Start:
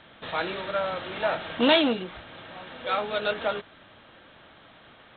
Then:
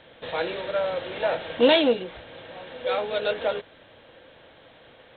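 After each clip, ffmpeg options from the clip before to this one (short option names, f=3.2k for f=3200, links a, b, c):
-af "equalizer=f=200:t=o:w=0.33:g=-5,equalizer=f=500:t=o:w=0.33:g=10,equalizer=f=1.25k:t=o:w=0.33:g=-7"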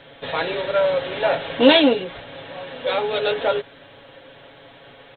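-af "aecho=1:1:7.2:0.7,volume=4.5dB"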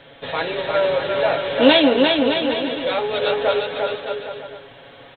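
-af "aecho=1:1:350|612.5|809.4|957|1068:0.631|0.398|0.251|0.158|0.1"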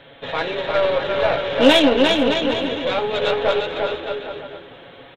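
-filter_complex "[0:a]aeval=exprs='0.891*(cos(1*acos(clip(val(0)/0.891,-1,1)))-cos(1*PI/2))+0.0447*(cos(8*acos(clip(val(0)/0.891,-1,1)))-cos(8*PI/2))':c=same,asplit=4[a][b][c][d];[b]adelay=439,afreqshift=-78,volume=-18dB[e];[c]adelay=878,afreqshift=-156,volume=-27.6dB[f];[d]adelay=1317,afreqshift=-234,volume=-37.3dB[g];[a][e][f][g]amix=inputs=4:normalize=0"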